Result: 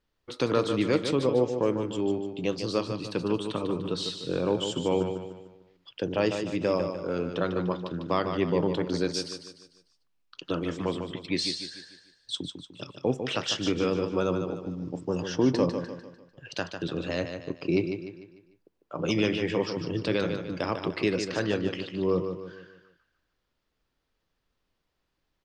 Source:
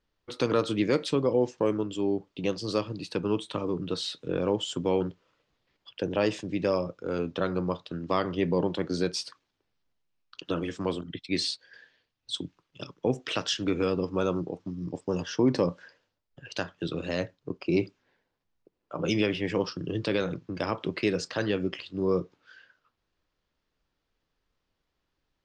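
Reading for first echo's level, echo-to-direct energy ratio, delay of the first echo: −7.5 dB, −6.5 dB, 149 ms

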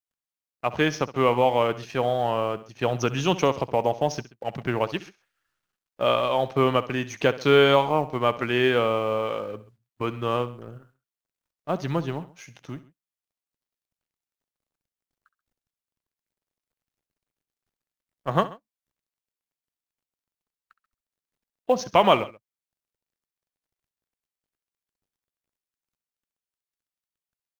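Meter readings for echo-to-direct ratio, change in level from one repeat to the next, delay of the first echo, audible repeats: −15.5 dB, −5.0 dB, 66 ms, 2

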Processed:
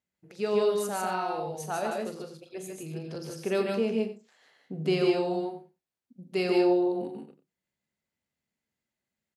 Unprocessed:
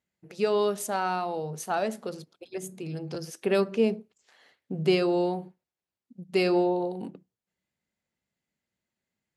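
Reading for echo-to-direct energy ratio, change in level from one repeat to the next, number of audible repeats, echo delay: −0.5 dB, repeats not evenly spaced, 6, 43 ms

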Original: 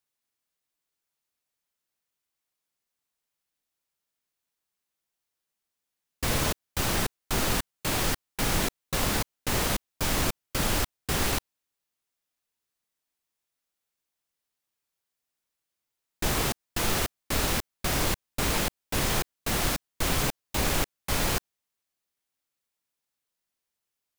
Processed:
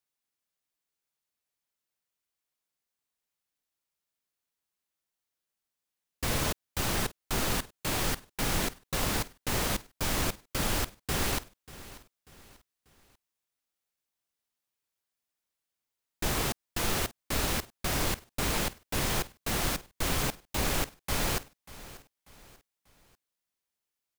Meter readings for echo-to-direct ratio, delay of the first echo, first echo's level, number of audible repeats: −17.5 dB, 590 ms, −18.0 dB, 3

